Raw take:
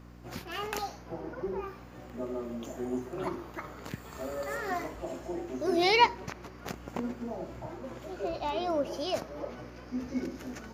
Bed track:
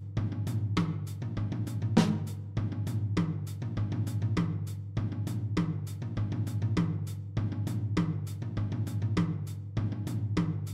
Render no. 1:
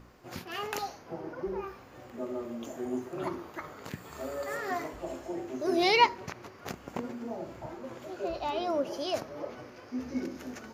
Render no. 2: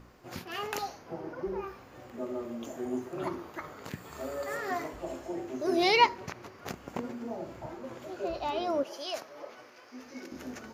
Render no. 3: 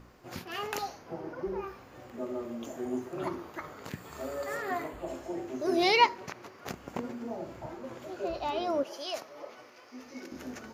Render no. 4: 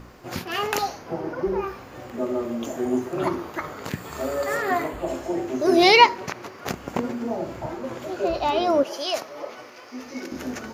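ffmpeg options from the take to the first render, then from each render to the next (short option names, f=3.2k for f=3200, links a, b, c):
-af "bandreject=f=60:t=h:w=4,bandreject=f=120:t=h:w=4,bandreject=f=180:t=h:w=4,bandreject=f=240:t=h:w=4,bandreject=f=300:t=h:w=4"
-filter_complex "[0:a]asettb=1/sr,asplit=3[a][b][c];[a]atrim=end=8.834[d];[b]atrim=start=8.83:end=10.32,asetpts=PTS-STARTPTS,afade=t=in:d=0.004:c=qsin,afade=t=out:st=1.486:d=0.004:c=qsin,highpass=f=960:p=1[e];[c]atrim=start=10.316[f];[d][e]acrossfade=d=0.004:c1=hsin:c2=qsin[g];[g][f]acrossfade=d=0.004:c1=qsin:c2=hsin"
-filter_complex "[0:a]asettb=1/sr,asplit=3[a][b][c];[a]atrim=end=4.624[d];[b]atrim=start=4.62:end=5.08,asetpts=PTS-STARTPTS,afade=t=in:d=0.004:c=qsin,afade=t=out:st=0.456:d=0.004:c=qsin,equalizer=f=5.6k:w=3.8:g=-13.5[e];[c]atrim=start=5.076[f];[d][e]acrossfade=d=0.004:c1=hsin:c2=qsin[g];[g][f]acrossfade=d=0.004:c1=qsin:c2=hsin,asettb=1/sr,asplit=3[h][i][j];[h]atrim=end=5.924[k];[i]atrim=start=5.92:end=6.68,asetpts=PTS-STARTPTS,afade=t=in:d=0.004:c=qsin,afade=t=out:st=0.756:d=0.004:c=qsin,highpass=f=190:p=1[l];[j]atrim=start=6.676[m];[k][l]acrossfade=d=0.004:c1=hsin:c2=qsin[n];[n][m]acrossfade=d=0.004:c1=qsin:c2=hsin,asettb=1/sr,asplit=3[o][p][q];[o]atrim=end=9.134[r];[p]atrim=start=9.13:end=10.22,asetpts=PTS-STARTPTS,afade=t=in:d=0.004:c=qsin,afade=t=out:st=1.086:d=0.004:c=qsin,bandreject=f=1.6k:w=12[s];[q]atrim=start=10.216[t];[r][s]acrossfade=d=0.004:c1=hsin:c2=qsin[u];[u][t]acrossfade=d=0.004:c1=qsin:c2=hsin"
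-af "volume=10dB,alimiter=limit=-3dB:level=0:latency=1"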